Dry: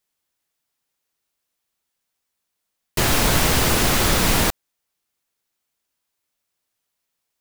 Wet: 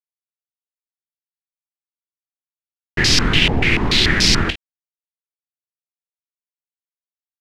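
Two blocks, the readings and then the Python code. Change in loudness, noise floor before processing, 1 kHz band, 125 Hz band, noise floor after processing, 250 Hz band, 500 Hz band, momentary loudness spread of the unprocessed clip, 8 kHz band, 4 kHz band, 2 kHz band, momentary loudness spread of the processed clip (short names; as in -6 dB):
+3.0 dB, -79 dBFS, -4.0 dB, +2.5 dB, under -85 dBFS, +3.0 dB, -2.0 dB, 5 LU, -2.5 dB, +7.0 dB, +5.5 dB, 11 LU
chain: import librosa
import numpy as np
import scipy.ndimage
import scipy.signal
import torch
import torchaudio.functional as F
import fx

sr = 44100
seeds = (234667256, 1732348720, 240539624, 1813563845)

p1 = fx.band_shelf(x, sr, hz=860.0, db=-15.5, octaves=1.7)
p2 = np.where(np.abs(p1) >= 10.0 ** (-20.5 / 20.0), p1, 0.0)
p3 = p2 + fx.room_early_taps(p2, sr, ms=(24, 53), db=(-11.0, -14.0), dry=0)
p4 = fx.filter_held_lowpass(p3, sr, hz=6.9, low_hz=790.0, high_hz=5100.0)
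y = p4 * librosa.db_to_amplitude(3.0)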